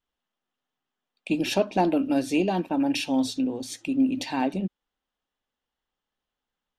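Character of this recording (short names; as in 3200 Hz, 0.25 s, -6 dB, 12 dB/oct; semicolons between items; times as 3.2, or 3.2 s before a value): noise floor -87 dBFS; spectral tilt -5.0 dB/oct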